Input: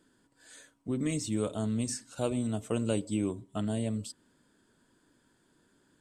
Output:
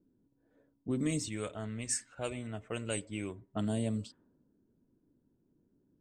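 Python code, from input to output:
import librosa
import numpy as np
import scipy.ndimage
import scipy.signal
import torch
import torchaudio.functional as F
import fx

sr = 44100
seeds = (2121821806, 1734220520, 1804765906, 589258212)

y = fx.graphic_eq(x, sr, hz=(125, 250, 500, 1000, 2000, 4000, 8000), db=(-5, -9, -3, -5, 10, -5, 7), at=(1.28, 3.56))
y = fx.env_lowpass(y, sr, base_hz=330.0, full_db=-28.5)
y = y * librosa.db_to_amplitude(-1.0)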